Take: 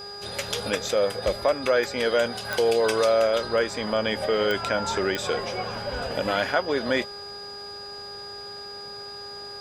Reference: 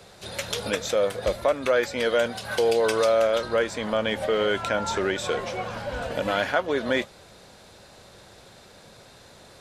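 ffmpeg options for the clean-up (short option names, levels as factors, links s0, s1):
-af "adeclick=t=4,bandreject=f=406.4:t=h:w=4,bandreject=f=812.8:t=h:w=4,bandreject=f=1219.2:t=h:w=4,bandreject=f=1625.6:t=h:w=4,bandreject=f=4900:w=30"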